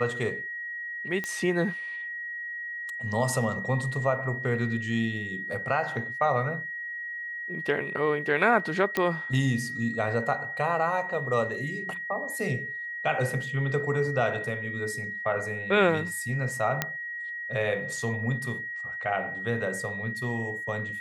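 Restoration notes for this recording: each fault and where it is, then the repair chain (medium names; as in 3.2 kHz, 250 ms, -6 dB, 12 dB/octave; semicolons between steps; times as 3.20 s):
whine 1.9 kHz -33 dBFS
1.24 s: pop -17 dBFS
8.97 s: pop -12 dBFS
16.82 s: pop -9 dBFS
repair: de-click; band-stop 1.9 kHz, Q 30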